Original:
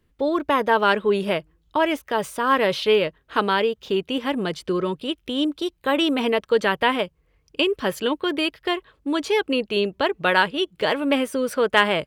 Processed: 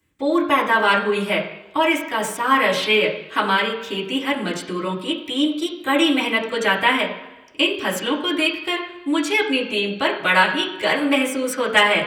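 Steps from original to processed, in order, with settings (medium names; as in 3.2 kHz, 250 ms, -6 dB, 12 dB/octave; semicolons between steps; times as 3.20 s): high-pass 60 Hz; treble shelf 3.4 kHz +9.5 dB; reverberation RT60 1.1 s, pre-delay 3 ms, DRR -5 dB; trim -4.5 dB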